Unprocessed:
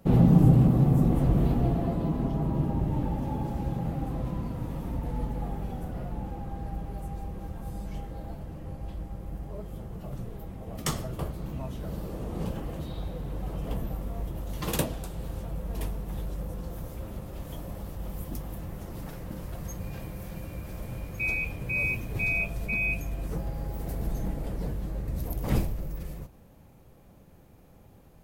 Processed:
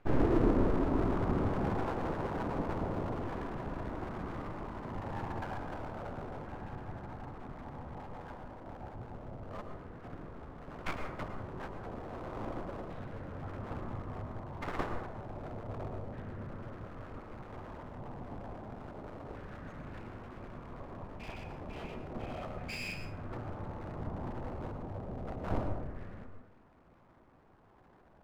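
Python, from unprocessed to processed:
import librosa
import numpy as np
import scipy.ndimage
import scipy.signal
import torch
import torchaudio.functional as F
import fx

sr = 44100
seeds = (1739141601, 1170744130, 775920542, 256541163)

y = fx.filter_lfo_lowpass(x, sr, shape='saw_down', hz=0.31, low_hz=610.0, high_hz=1700.0, q=3.1)
y = np.abs(y)
y = fx.rev_plate(y, sr, seeds[0], rt60_s=0.79, hf_ratio=0.45, predelay_ms=95, drr_db=6.0)
y = F.gain(torch.from_numpy(y), -6.0).numpy()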